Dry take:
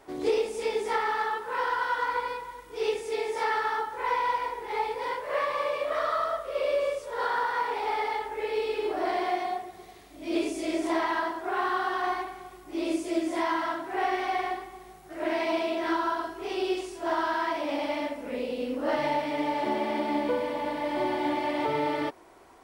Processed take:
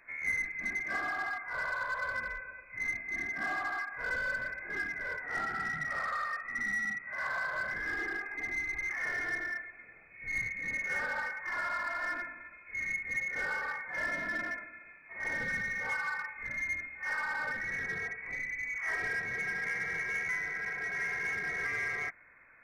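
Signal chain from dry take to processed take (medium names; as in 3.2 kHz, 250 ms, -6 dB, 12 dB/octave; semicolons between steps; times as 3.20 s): frequency inversion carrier 2.5 kHz; bass shelf 88 Hz +6.5 dB; in parallel at -10 dB: wavefolder -29 dBFS; on the sum: trim -7.5 dB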